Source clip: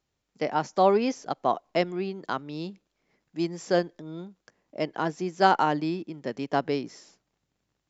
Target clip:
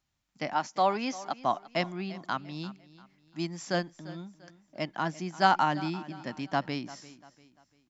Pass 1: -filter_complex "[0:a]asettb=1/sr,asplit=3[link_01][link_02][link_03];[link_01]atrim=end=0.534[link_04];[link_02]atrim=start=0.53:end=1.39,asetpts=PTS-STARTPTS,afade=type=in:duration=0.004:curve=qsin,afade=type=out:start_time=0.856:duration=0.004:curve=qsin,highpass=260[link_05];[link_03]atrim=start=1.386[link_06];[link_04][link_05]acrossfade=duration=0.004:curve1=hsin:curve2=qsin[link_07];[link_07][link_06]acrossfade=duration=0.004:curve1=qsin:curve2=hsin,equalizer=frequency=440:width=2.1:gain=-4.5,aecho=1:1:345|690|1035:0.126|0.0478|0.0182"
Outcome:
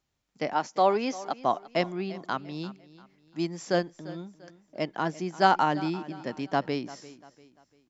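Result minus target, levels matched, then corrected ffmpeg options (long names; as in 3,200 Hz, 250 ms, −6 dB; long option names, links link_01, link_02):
500 Hz band +3.0 dB
-filter_complex "[0:a]asettb=1/sr,asplit=3[link_01][link_02][link_03];[link_01]atrim=end=0.534[link_04];[link_02]atrim=start=0.53:end=1.39,asetpts=PTS-STARTPTS,afade=type=in:duration=0.004:curve=qsin,afade=type=out:start_time=0.856:duration=0.004:curve=qsin,highpass=260[link_05];[link_03]atrim=start=1.386[link_06];[link_04][link_05]acrossfade=duration=0.004:curve1=hsin:curve2=qsin[link_07];[link_07][link_06]acrossfade=duration=0.004:curve1=qsin:curve2=hsin,equalizer=frequency=440:width=2.1:gain=-15,aecho=1:1:345|690|1035:0.126|0.0478|0.0182"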